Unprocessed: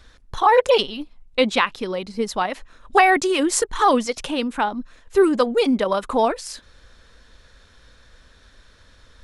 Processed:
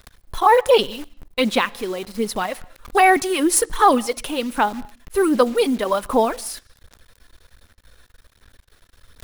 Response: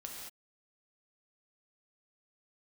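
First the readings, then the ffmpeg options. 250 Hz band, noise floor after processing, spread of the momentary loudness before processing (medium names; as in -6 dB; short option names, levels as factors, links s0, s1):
+0.5 dB, -59 dBFS, 14 LU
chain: -filter_complex "[0:a]aphaser=in_gain=1:out_gain=1:delay=3:decay=0.4:speed=1.3:type=sinusoidal,aexciter=amount=2.7:drive=9.7:freq=9600,acrusher=bits=7:dc=4:mix=0:aa=0.000001,asplit=2[s0][s1];[1:a]atrim=start_sample=2205,lowpass=6000[s2];[s1][s2]afir=irnorm=-1:irlink=0,volume=0.119[s3];[s0][s3]amix=inputs=2:normalize=0,volume=0.841"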